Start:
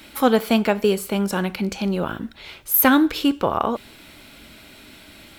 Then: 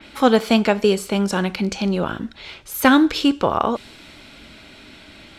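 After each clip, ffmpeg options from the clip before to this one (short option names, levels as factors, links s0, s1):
-af "lowpass=5900,adynamicequalizer=threshold=0.00794:dfrequency=4500:dqfactor=0.7:tfrequency=4500:tqfactor=0.7:attack=5:release=100:ratio=0.375:range=4:mode=boostabove:tftype=highshelf,volume=1.26"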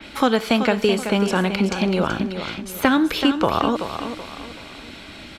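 -filter_complex "[0:a]acrossover=split=420|1100|3200[s0][s1][s2][s3];[s0]acompressor=threshold=0.0631:ratio=4[s4];[s1]acompressor=threshold=0.0447:ratio=4[s5];[s2]acompressor=threshold=0.0447:ratio=4[s6];[s3]acompressor=threshold=0.0112:ratio=4[s7];[s4][s5][s6][s7]amix=inputs=4:normalize=0,aecho=1:1:380|760|1140|1520:0.355|0.135|0.0512|0.0195,volume=1.58"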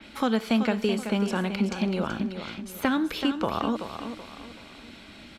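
-af "equalizer=f=220:t=o:w=0.29:g=6.5,volume=0.376"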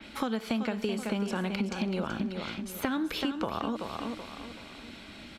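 -af "acompressor=threshold=0.0447:ratio=6"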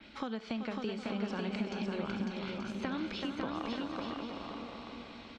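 -filter_complex "[0:a]lowpass=f=6000:w=0.5412,lowpass=f=6000:w=1.3066,asplit=2[s0][s1];[s1]aecho=0:1:550|880|1078|1197|1268:0.631|0.398|0.251|0.158|0.1[s2];[s0][s2]amix=inputs=2:normalize=0,volume=0.447"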